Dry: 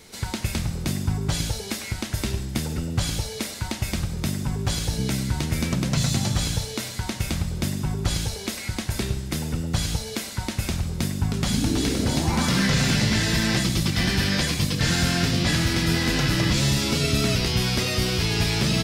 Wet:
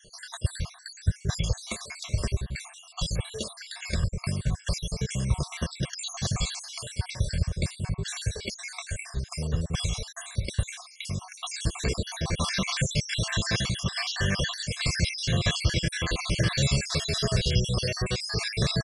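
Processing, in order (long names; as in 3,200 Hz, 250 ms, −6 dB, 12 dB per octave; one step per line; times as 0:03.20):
time-frequency cells dropped at random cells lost 63%
notch filter 990 Hz, Q 27
comb filter 1.8 ms, depth 80%
downsampling to 22,050 Hz
level −2.5 dB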